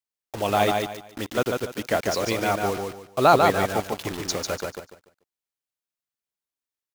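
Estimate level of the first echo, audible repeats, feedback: -4.0 dB, 3, 28%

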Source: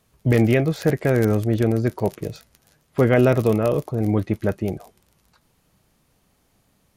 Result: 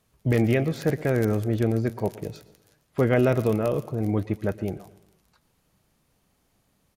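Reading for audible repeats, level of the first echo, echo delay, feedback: 4, -20.0 dB, 0.116 s, no steady repeat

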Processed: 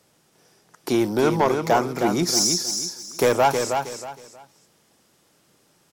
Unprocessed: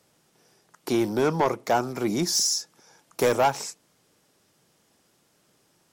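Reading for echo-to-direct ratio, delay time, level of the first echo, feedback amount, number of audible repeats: -5.5 dB, 0.317 s, -6.0 dB, 27%, 3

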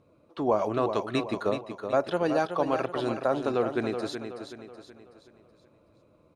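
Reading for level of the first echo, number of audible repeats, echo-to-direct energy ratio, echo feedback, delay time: -8.0 dB, 4, -7.0 dB, 43%, 0.375 s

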